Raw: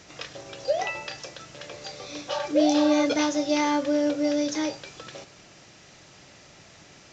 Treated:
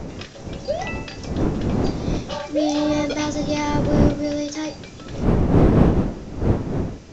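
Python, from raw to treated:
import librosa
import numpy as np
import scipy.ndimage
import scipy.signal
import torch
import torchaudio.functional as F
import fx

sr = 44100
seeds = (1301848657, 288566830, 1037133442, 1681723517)

y = fx.dmg_wind(x, sr, seeds[0], corner_hz=280.0, level_db=-22.0)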